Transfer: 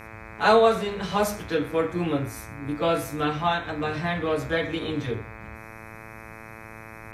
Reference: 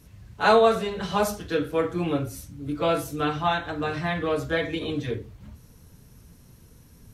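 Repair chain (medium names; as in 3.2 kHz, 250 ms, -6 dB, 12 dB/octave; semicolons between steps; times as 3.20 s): de-hum 110.8 Hz, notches 23; inverse comb 126 ms -23 dB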